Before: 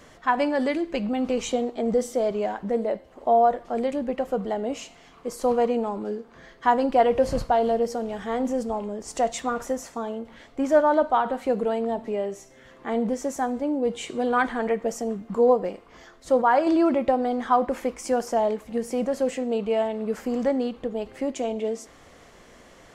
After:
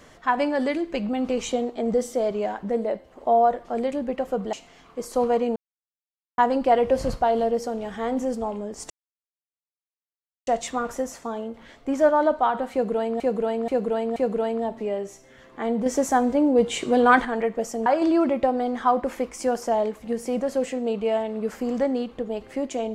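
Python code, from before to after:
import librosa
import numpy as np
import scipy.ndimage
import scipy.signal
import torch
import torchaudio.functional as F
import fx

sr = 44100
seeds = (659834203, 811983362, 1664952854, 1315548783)

y = fx.edit(x, sr, fx.cut(start_s=4.53, length_s=0.28),
    fx.silence(start_s=5.84, length_s=0.82),
    fx.insert_silence(at_s=9.18, length_s=1.57),
    fx.repeat(start_s=11.43, length_s=0.48, count=4),
    fx.clip_gain(start_s=13.13, length_s=1.39, db=6.0),
    fx.cut(start_s=15.13, length_s=1.38), tone=tone)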